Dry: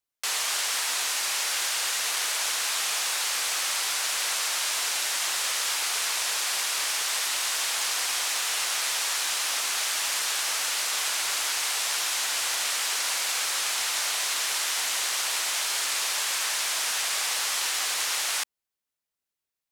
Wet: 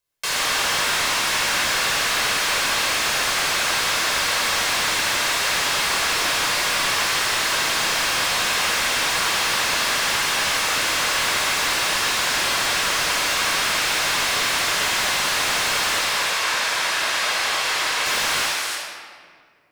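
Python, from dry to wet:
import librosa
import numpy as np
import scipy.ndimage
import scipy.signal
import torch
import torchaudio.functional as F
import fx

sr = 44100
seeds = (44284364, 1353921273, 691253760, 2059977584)

y = fx.lowpass(x, sr, hz=3100.0, slope=6, at=(15.98, 18.06))
y = y + 10.0 ** (-8.5 / 20.0) * np.pad(y, (int(319 * sr / 1000.0), 0))[:len(y)]
y = fx.room_shoebox(y, sr, seeds[0], volume_m3=3600.0, walls='mixed', distance_m=5.3)
y = fx.slew_limit(y, sr, full_power_hz=280.0)
y = F.gain(torch.from_numpy(y), 3.0).numpy()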